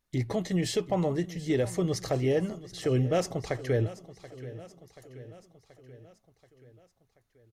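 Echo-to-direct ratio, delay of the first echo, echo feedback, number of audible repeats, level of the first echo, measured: −14.5 dB, 731 ms, 58%, 4, −16.5 dB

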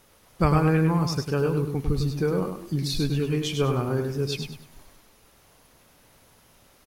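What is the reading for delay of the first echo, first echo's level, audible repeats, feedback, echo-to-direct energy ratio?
101 ms, −6.0 dB, 3, 30%, −5.5 dB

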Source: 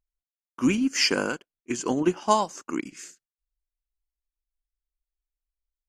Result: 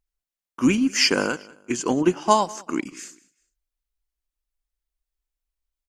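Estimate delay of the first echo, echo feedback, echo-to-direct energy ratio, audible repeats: 193 ms, 33%, −22.0 dB, 2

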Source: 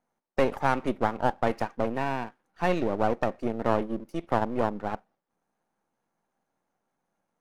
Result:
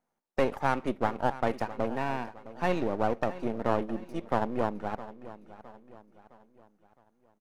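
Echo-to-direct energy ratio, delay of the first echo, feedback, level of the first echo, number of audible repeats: −15.0 dB, 662 ms, 44%, −16.0 dB, 3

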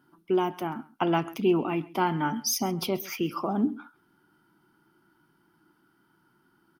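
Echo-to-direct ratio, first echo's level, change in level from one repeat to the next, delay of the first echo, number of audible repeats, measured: −21.0 dB, −21.0 dB, repeats not evenly spaced, 133 ms, 1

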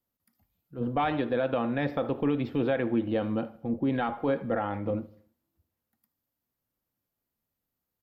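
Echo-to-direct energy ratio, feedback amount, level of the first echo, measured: −20.0 dB, 49%, −21.0 dB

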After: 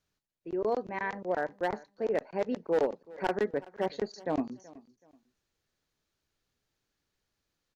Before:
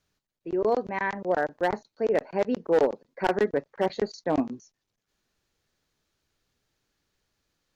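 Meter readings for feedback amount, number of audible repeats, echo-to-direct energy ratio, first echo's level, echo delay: 28%, 2, −20.5 dB, −21.0 dB, 377 ms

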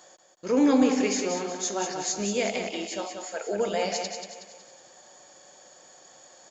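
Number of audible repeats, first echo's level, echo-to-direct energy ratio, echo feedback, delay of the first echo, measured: 4, −6.0 dB, −5.0 dB, 43%, 185 ms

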